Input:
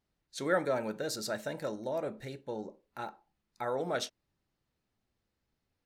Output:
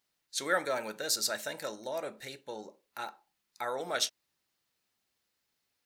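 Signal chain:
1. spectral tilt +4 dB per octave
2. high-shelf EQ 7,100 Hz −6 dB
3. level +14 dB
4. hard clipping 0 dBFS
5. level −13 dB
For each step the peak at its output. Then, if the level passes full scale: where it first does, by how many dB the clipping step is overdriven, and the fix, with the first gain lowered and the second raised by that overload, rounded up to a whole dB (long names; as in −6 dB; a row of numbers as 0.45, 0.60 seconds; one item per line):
−14.5, −16.5, −2.5, −2.5, −15.5 dBFS
no step passes full scale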